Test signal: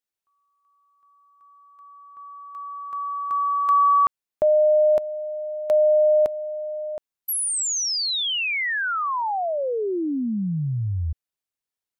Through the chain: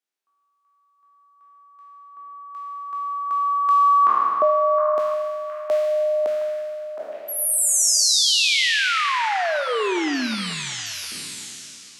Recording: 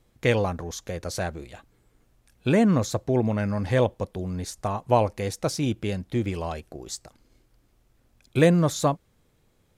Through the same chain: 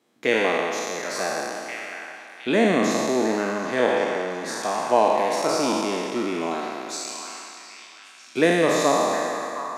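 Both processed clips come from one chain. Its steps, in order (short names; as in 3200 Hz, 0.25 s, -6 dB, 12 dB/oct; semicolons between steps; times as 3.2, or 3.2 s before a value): spectral trails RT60 2.43 s; HPF 230 Hz 24 dB/oct; high shelf 10000 Hz -9.5 dB; notch 530 Hz, Q 12; on a send: delay with a stepping band-pass 0.715 s, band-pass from 1300 Hz, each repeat 0.7 oct, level -6 dB; on the sum: Schroeder reverb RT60 1 s, combs from 28 ms, DRR 12.5 dB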